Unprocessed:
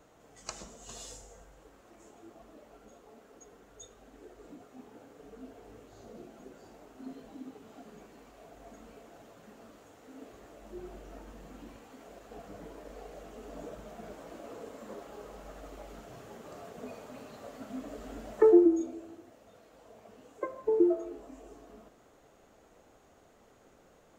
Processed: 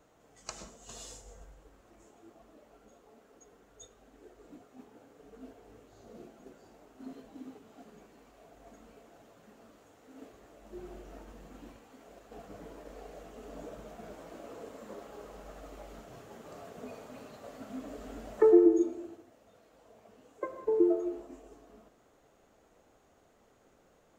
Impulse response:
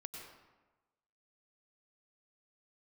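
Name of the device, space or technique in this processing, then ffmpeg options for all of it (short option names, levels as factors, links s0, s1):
keyed gated reverb: -filter_complex "[0:a]asettb=1/sr,asplit=3[s0][s1][s2];[s0]atrim=end=1.254[s3];[s1]atrim=start=1.25:end=2.05,asetpts=PTS-STARTPTS,afade=t=in:d=0.004:c=qsin,afade=t=out:st=0.796:d=0.004:c=qsin,lowshelf=f=110:g=9[s4];[s2]atrim=start=2.046[s5];[s3][s4]acrossfade=d=0.004:c1=hsin:c2=qsin[s6];[s6][s5]acrossfade=d=0.004:c1=qsin:c2=hsin,asplit=3[s7][s8][s9];[1:a]atrim=start_sample=2205[s10];[s8][s10]afir=irnorm=-1:irlink=0[s11];[s9]apad=whole_len=1066528[s12];[s11][s12]sidechaingate=range=0.0224:threshold=0.00398:ratio=16:detection=peak,volume=0.75[s13];[s7][s13]amix=inputs=2:normalize=0,volume=0.631"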